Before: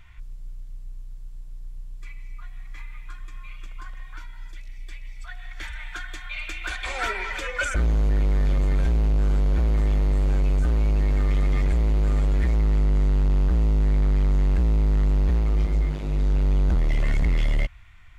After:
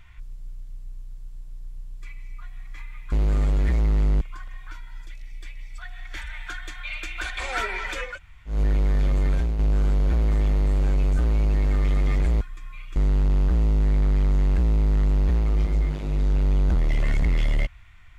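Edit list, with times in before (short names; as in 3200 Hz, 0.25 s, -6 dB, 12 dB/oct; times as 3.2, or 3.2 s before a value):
3.12–3.67 swap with 11.87–12.96
7.57–7.99 room tone, crossfade 0.16 s
8.77–9.05 fade out, to -6.5 dB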